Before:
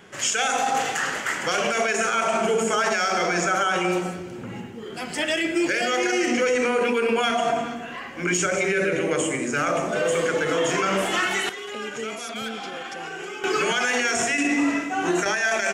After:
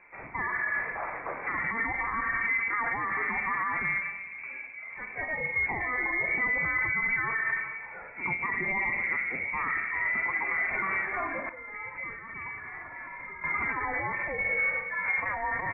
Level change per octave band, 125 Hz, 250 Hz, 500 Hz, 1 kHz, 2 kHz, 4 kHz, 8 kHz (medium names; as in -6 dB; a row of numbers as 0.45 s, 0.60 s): -9.5 dB, -18.0 dB, -18.5 dB, -8.0 dB, -2.0 dB, under -40 dB, under -40 dB